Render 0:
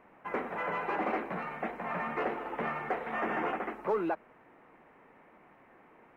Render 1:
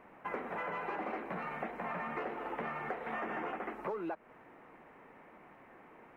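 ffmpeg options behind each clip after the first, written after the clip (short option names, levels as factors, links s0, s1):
-af "acompressor=threshold=0.0126:ratio=6,volume=1.26"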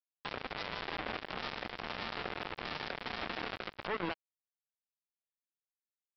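-af "alimiter=level_in=4.22:limit=0.0631:level=0:latency=1:release=80,volume=0.237,aresample=11025,acrusher=bits=5:mix=0:aa=0.5,aresample=44100,volume=5.31"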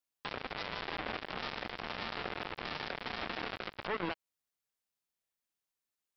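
-af "alimiter=level_in=1.78:limit=0.0631:level=0:latency=1:release=113,volume=0.562,volume=1.88"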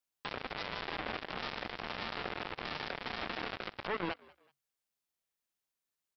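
-filter_complex "[0:a]asplit=3[s0][s1][s2];[s1]adelay=189,afreqshift=68,volume=0.0631[s3];[s2]adelay=378,afreqshift=136,volume=0.0221[s4];[s0][s3][s4]amix=inputs=3:normalize=0"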